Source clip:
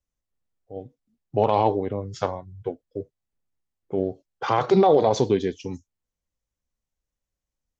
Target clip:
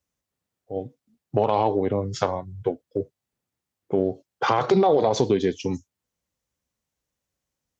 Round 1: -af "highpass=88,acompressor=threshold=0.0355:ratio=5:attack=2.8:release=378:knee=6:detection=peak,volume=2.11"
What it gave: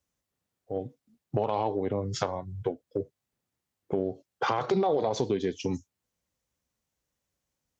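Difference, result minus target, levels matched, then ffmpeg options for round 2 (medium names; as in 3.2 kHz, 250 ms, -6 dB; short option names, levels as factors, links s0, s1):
compression: peak gain reduction +7 dB
-af "highpass=88,acompressor=threshold=0.1:ratio=5:attack=2.8:release=378:knee=6:detection=peak,volume=2.11"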